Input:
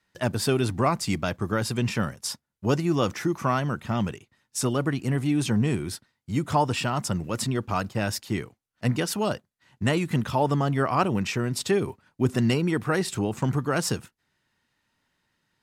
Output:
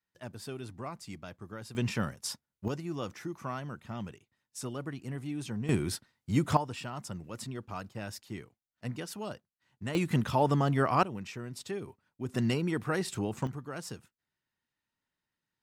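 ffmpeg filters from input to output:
ffmpeg -i in.wav -af "asetnsamples=nb_out_samples=441:pad=0,asendcmd='1.75 volume volume -5.5dB;2.68 volume volume -13dB;5.69 volume volume -1dB;6.57 volume volume -13dB;9.95 volume volume -3dB;11.03 volume volume -14dB;12.34 volume volume -6.5dB;13.47 volume volume -15dB',volume=-17.5dB" out.wav

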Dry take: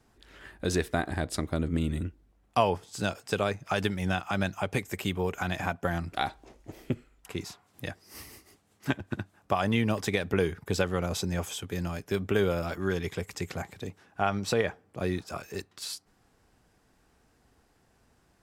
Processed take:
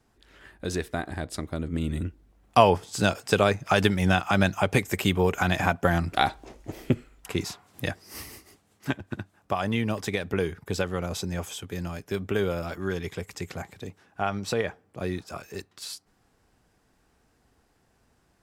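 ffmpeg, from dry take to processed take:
ffmpeg -i in.wav -af "volume=7dB,afade=type=in:start_time=1.68:duration=0.94:silence=0.354813,afade=type=out:start_time=7.89:duration=1.09:silence=0.421697" out.wav

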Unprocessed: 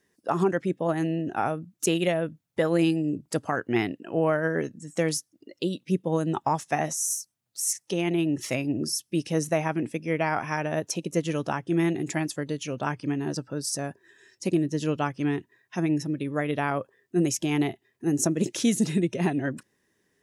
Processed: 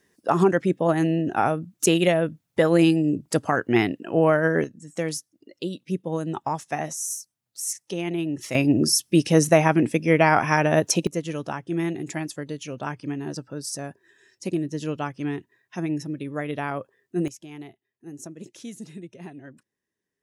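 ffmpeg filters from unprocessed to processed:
ffmpeg -i in.wav -af "asetnsamples=nb_out_samples=441:pad=0,asendcmd='4.64 volume volume -2dB;8.55 volume volume 8.5dB;11.07 volume volume -2dB;17.28 volume volume -15dB',volume=5dB" out.wav

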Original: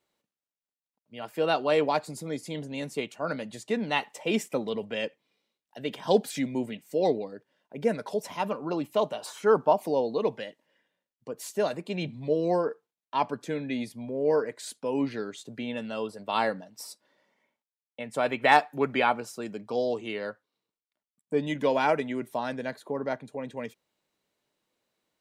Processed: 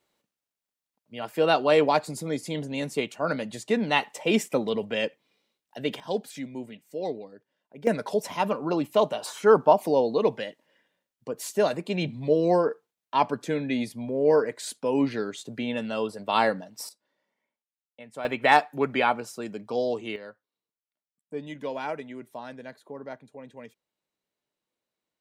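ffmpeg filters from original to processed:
ffmpeg -i in.wav -af "asetnsamples=nb_out_samples=441:pad=0,asendcmd='6 volume volume -6.5dB;7.87 volume volume 4dB;16.89 volume volume -8.5dB;18.25 volume volume 1dB;20.16 volume volume -8dB',volume=4dB" out.wav

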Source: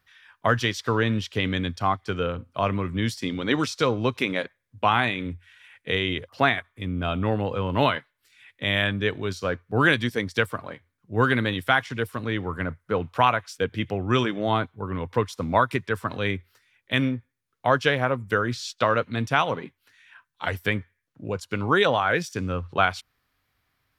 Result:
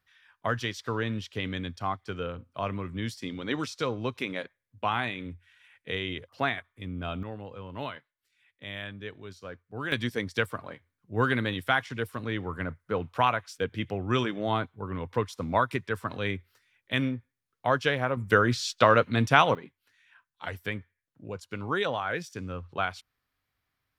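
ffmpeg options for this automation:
ffmpeg -i in.wav -af "asetnsamples=nb_out_samples=441:pad=0,asendcmd='7.23 volume volume -15dB;9.92 volume volume -4.5dB;18.17 volume volume 2dB;19.55 volume volume -8.5dB',volume=-7.5dB" out.wav

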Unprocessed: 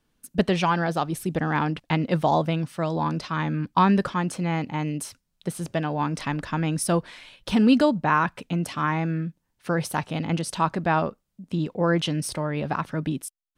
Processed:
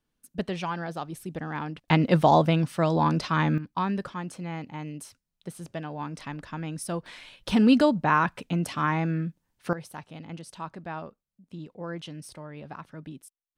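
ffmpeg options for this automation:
ffmpeg -i in.wav -af "asetnsamples=nb_out_samples=441:pad=0,asendcmd='1.88 volume volume 2.5dB;3.58 volume volume -9dB;7.06 volume volume -1dB;9.73 volume volume -14dB',volume=-9dB" out.wav

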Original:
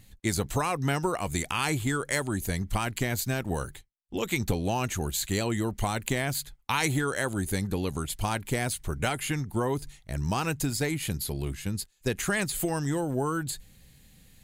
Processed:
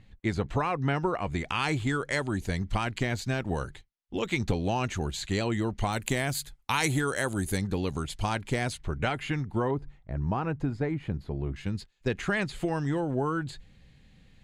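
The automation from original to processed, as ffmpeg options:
ffmpeg -i in.wav -af "asetnsamples=nb_out_samples=441:pad=0,asendcmd='1.47 lowpass f 4900;5.93 lowpass f 12000;7.57 lowpass f 6000;8.77 lowpass f 3300;9.71 lowpass f 1300;11.56 lowpass f 3400',lowpass=2700" out.wav

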